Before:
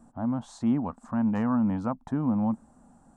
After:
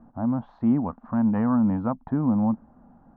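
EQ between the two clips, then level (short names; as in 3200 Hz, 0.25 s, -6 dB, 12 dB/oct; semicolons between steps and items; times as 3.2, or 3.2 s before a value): LPF 2000 Hz 12 dB/oct; air absorption 290 m; +4.0 dB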